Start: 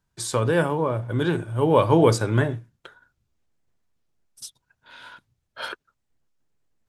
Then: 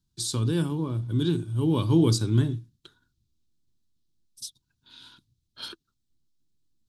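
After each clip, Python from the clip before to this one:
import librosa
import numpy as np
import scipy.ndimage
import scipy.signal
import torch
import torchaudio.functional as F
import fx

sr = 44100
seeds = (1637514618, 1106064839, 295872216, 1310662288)

y = fx.curve_eq(x, sr, hz=(330.0, 550.0, 1100.0, 2000.0, 3900.0, 7200.0), db=(0, -21, -13, -17, 4, -1))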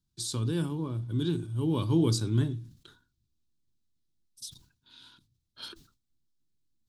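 y = fx.sustainer(x, sr, db_per_s=120.0)
y = y * librosa.db_to_amplitude(-4.5)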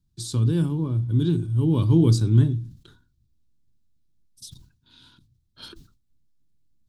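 y = fx.low_shelf(x, sr, hz=280.0, db=12.0)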